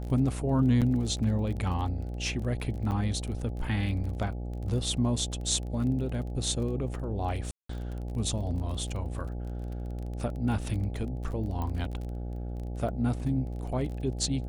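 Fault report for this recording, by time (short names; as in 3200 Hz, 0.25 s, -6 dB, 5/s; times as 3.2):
buzz 60 Hz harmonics 14 -35 dBFS
crackle 24/s -37 dBFS
0.81–0.82 gap 7.4 ms
2.91–2.92 gap 6.6 ms
7.51–7.69 gap 0.184 s
11.62 pop -22 dBFS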